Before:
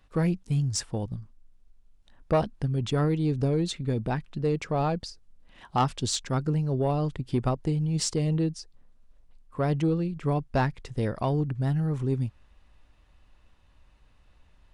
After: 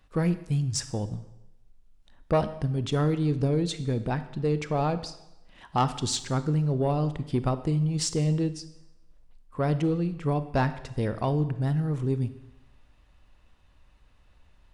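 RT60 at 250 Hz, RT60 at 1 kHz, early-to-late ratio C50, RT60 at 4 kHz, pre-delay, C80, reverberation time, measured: 0.90 s, 0.90 s, 13.0 dB, 0.85 s, 27 ms, 15.5 dB, 0.90 s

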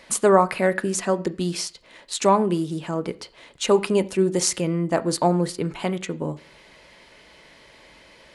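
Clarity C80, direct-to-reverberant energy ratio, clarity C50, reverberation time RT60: 24.0 dB, 10.0 dB, 20.5 dB, 0.40 s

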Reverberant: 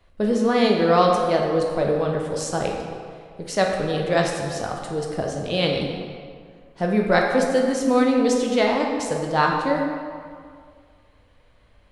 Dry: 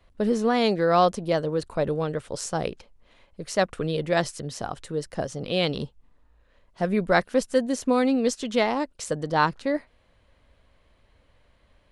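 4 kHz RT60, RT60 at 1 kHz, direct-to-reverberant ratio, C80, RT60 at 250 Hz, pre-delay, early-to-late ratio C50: 1.3 s, 2.0 s, 0.0 dB, 4.0 dB, 1.9 s, 9 ms, 2.5 dB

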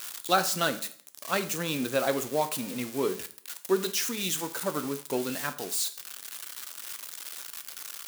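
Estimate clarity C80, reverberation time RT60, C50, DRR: 18.0 dB, 0.50 s, 14.5 dB, 9.5 dB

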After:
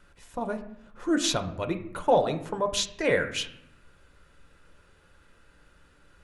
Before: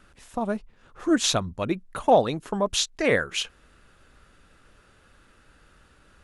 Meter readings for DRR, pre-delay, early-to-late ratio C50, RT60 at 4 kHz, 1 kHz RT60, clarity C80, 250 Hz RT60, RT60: 6.0 dB, 6 ms, 11.5 dB, 0.50 s, 0.70 s, 14.5 dB, 1.1 s, 0.70 s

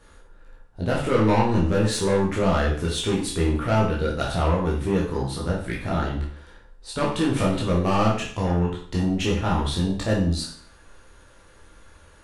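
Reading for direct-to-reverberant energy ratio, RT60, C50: -4.5 dB, 0.50 s, 4.5 dB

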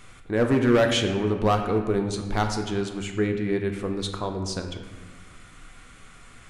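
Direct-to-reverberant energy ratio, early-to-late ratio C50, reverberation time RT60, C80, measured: 4.0 dB, 6.5 dB, 1.4 s, 8.0 dB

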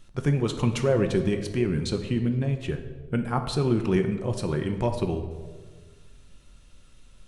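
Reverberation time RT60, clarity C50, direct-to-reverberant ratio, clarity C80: 1.6 s, 9.0 dB, 5.5 dB, 11.0 dB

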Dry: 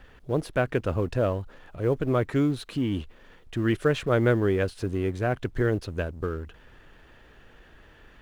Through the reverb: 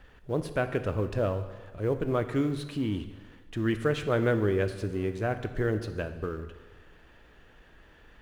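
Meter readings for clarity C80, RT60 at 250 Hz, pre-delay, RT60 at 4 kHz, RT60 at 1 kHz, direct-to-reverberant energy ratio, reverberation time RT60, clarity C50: 12.0 dB, 1.4 s, 5 ms, 1.2 s, 1.3 s, 8.5 dB, 1.3 s, 11.0 dB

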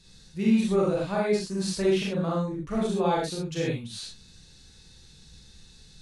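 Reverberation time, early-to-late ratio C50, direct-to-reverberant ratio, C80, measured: not exponential, 0.0 dB, -5.5 dB, 5.0 dB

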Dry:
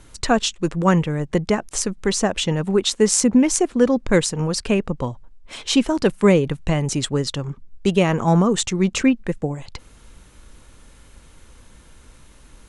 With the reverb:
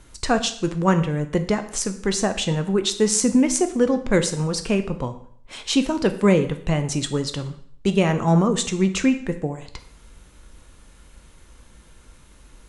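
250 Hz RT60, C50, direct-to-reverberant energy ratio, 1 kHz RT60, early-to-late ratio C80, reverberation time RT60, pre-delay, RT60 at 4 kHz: 0.60 s, 12.5 dB, 7.5 dB, 0.60 s, 15.5 dB, 0.60 s, 5 ms, 0.60 s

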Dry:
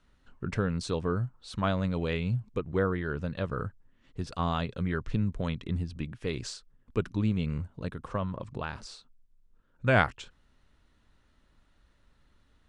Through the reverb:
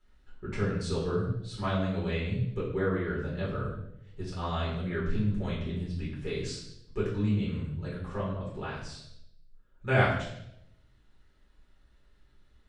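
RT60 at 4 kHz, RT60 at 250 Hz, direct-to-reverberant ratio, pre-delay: 0.75 s, 0.95 s, -7.5 dB, 5 ms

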